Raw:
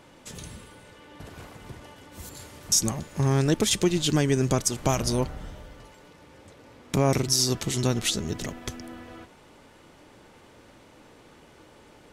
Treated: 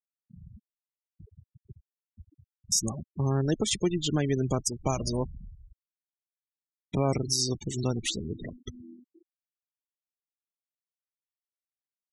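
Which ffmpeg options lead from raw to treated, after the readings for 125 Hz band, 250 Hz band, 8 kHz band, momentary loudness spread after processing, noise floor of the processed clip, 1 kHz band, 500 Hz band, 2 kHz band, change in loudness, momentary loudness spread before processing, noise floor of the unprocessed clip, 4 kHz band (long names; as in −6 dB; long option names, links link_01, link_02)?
−4.0 dB, −4.0 dB, −5.0 dB, 11 LU, below −85 dBFS, −5.0 dB, −4.0 dB, −8.0 dB, −4.0 dB, 21 LU, −54 dBFS, −5.0 dB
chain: -af "afftfilt=real='re*gte(hypot(re,im),0.0501)':imag='im*gte(hypot(re,im),0.0501)':win_size=1024:overlap=0.75,volume=-4dB"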